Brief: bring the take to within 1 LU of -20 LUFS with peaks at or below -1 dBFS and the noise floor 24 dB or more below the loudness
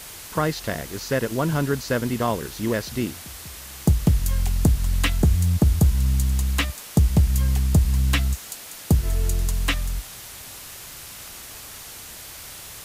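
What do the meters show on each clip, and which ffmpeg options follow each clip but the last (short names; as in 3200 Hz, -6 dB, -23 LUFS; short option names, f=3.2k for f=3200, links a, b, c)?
noise floor -40 dBFS; noise floor target -47 dBFS; loudness -23.0 LUFS; peak -8.0 dBFS; loudness target -20.0 LUFS
-> -af "afftdn=nr=7:nf=-40"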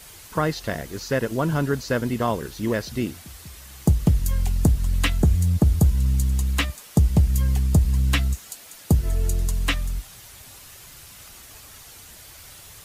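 noise floor -45 dBFS; noise floor target -47 dBFS
-> -af "afftdn=nr=6:nf=-45"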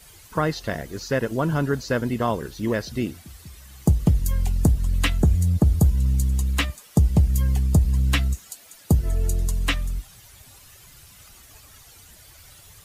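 noise floor -49 dBFS; loudness -23.0 LUFS; peak -8.5 dBFS; loudness target -20.0 LUFS
-> -af "volume=3dB"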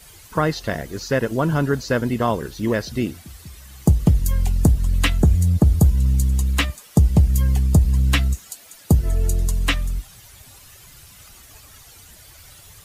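loudness -20.0 LUFS; peak -5.5 dBFS; noise floor -46 dBFS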